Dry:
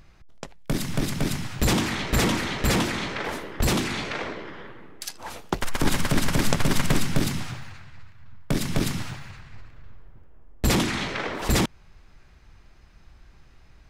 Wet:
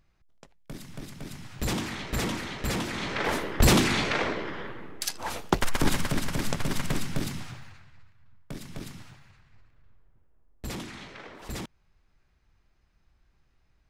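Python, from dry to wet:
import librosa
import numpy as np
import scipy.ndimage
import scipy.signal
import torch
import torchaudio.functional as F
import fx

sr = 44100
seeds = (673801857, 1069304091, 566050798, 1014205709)

y = fx.gain(x, sr, db=fx.line((1.24, -15.0), (1.67, -7.5), (2.83, -7.5), (3.31, 3.5), (5.47, 3.5), (6.25, -7.0), (7.66, -7.0), (8.58, -15.0)))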